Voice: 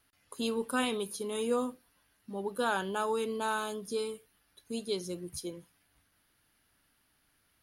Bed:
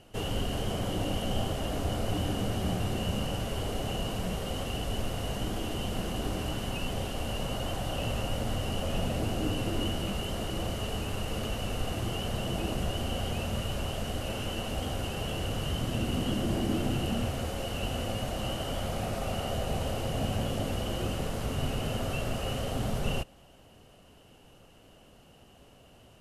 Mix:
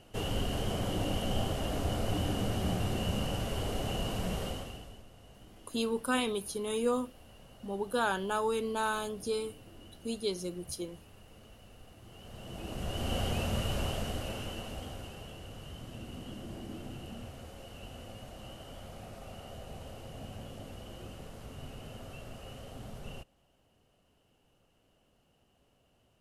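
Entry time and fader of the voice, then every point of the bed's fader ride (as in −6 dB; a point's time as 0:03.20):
5.35 s, +0.5 dB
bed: 0:04.45 −1.5 dB
0:05.05 −22 dB
0:12.00 −22 dB
0:13.14 0 dB
0:13.86 0 dB
0:15.40 −14 dB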